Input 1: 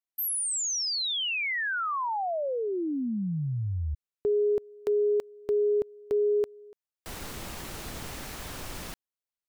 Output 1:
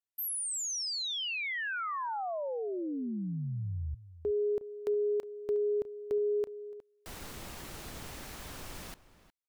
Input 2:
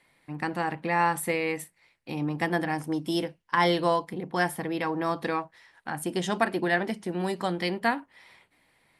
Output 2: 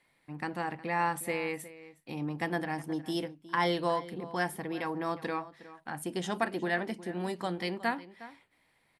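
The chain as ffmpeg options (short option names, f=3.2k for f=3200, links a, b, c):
-filter_complex "[0:a]asplit=2[a][b];[b]adelay=361.5,volume=-16dB,highshelf=f=4k:g=-8.13[c];[a][c]amix=inputs=2:normalize=0,volume=-5.5dB"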